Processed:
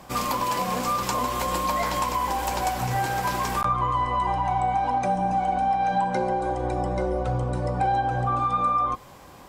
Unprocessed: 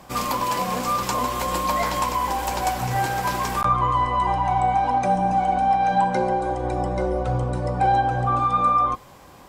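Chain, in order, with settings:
downward compressor 2 to 1, threshold −23 dBFS, peak gain reduction 5 dB

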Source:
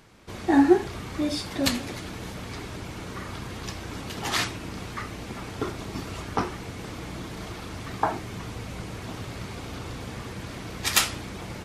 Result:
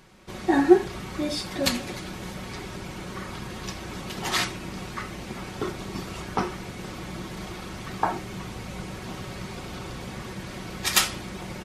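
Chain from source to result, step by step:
comb filter 5.4 ms, depth 43%

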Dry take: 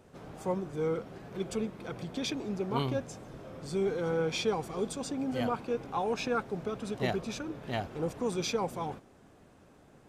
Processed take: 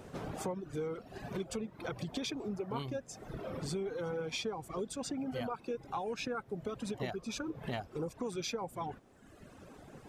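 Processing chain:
reverb reduction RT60 1.1 s
downward compressor 6 to 1, threshold −44 dBFS, peak gain reduction 18 dB
level +8 dB

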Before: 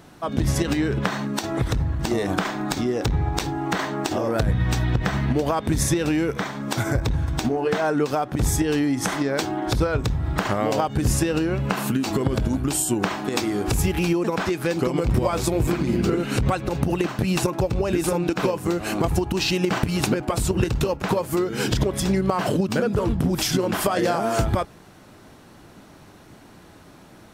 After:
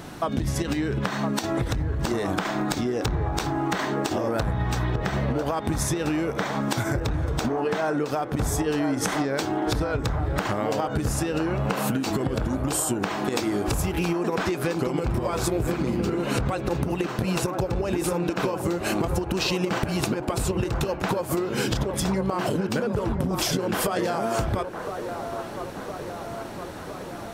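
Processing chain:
downward compressor 6 to 1, threshold −32 dBFS, peak gain reduction 16 dB
delay with a band-pass on its return 1,012 ms, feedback 66%, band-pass 770 Hz, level −6 dB
level +8.5 dB

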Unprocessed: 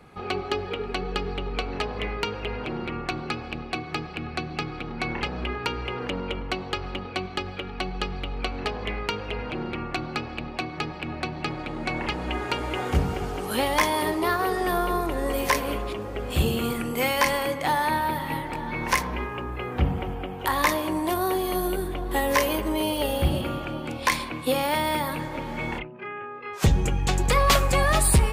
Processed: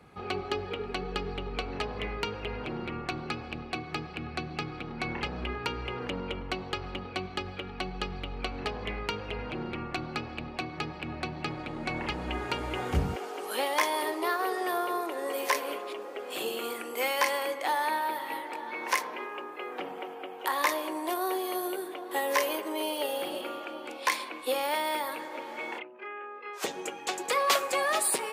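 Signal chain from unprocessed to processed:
high-pass filter 45 Hz 24 dB per octave, from 0:13.16 340 Hz
level −4.5 dB

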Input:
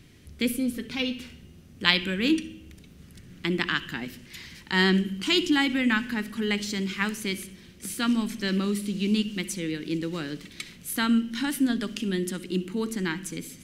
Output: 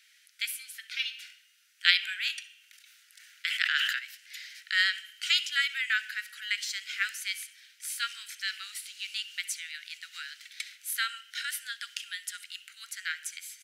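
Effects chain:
Chebyshev high-pass filter 1,400 Hz, order 6
far-end echo of a speakerphone 150 ms, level −29 dB
0:02.58–0:03.99: level that may fall only so fast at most 30 dB per second

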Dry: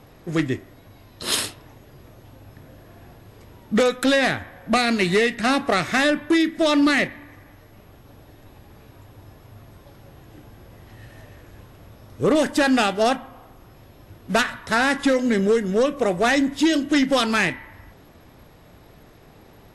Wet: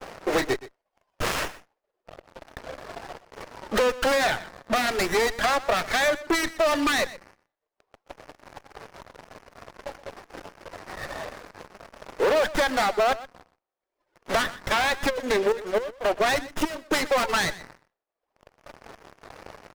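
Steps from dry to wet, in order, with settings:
low-pass filter 4,800 Hz 12 dB per octave
reverb reduction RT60 1.6 s
high-pass filter 460 Hz 24 dB per octave
downward expander −56 dBFS
downward compressor 8 to 1, threshold −32 dBFS, peak gain reduction 16 dB
leveller curve on the samples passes 5
0:15.09–0:17.28: gate pattern "xx...xxxx." 173 BPM −12 dB
single-tap delay 123 ms −17 dB
windowed peak hold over 9 samples
level +1 dB

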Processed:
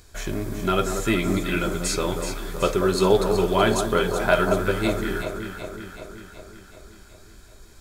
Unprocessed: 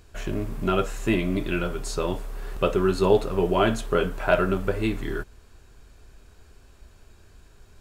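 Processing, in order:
high-shelf EQ 2,200 Hz +9.5 dB
notch filter 2,800 Hz, Q 5.1
delay that swaps between a low-pass and a high-pass 188 ms, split 1,300 Hz, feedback 77%, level −6 dB

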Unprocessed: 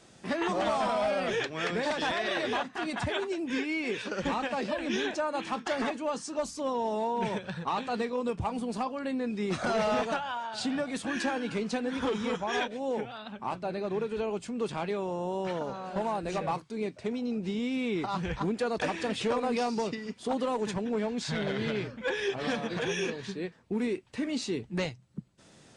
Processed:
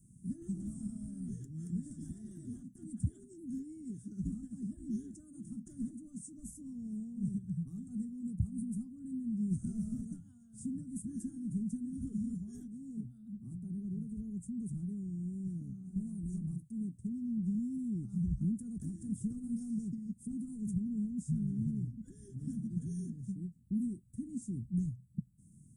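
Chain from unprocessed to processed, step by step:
inverse Chebyshev band-stop filter 490–4,500 Hz, stop band 50 dB
level +3 dB

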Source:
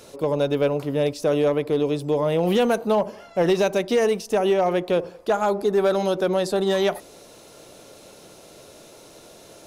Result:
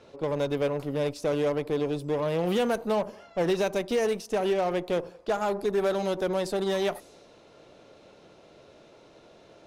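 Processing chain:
harmonic generator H 6 −22 dB, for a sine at −13 dBFS
low-pass that shuts in the quiet parts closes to 2,900 Hz, open at −21.5 dBFS
level −6 dB

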